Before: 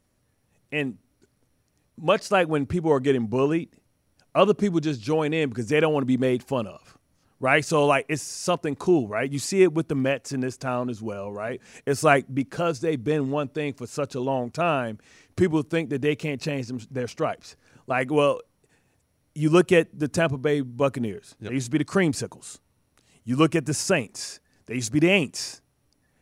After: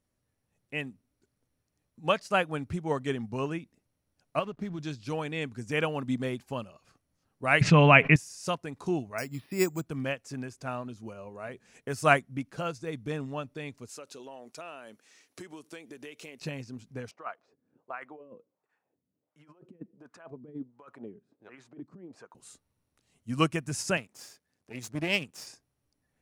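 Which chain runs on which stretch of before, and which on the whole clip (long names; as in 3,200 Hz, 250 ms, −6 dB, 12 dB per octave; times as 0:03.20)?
0:04.39–0:04.79: low-pass filter 4,600 Hz + downward compressor 3 to 1, threshold −22 dBFS + slack as between gear wheels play −43 dBFS
0:07.61–0:08.16: low-pass with resonance 2,400 Hz, resonance Q 2.4 + parametric band 170 Hz +12 dB 1.4 octaves + envelope flattener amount 70%
0:09.18–0:09.86: high-shelf EQ 6,200 Hz −8.5 dB + bad sample-rate conversion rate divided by 6×, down filtered, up hold
0:13.89–0:16.42: high-pass filter 300 Hz + high-shelf EQ 2,500 Hz +8.5 dB + downward compressor 4 to 1, threshold −31 dBFS
0:17.11–0:22.35: compressor whose output falls as the input rises −25 dBFS, ratio −0.5 + high-pass filter 100 Hz + LFO wah 1.4 Hz 210–1,300 Hz, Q 2
0:23.97–0:25.47: gain on one half-wave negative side −12 dB + high-pass filter 92 Hz
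whole clip: dynamic equaliser 390 Hz, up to −7 dB, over −34 dBFS, Q 1.1; expander for the loud parts 1.5 to 1, over −36 dBFS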